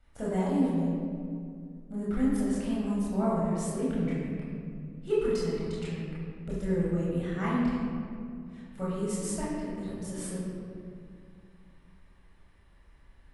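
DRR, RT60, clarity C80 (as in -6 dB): -8.0 dB, 2.3 s, 0.0 dB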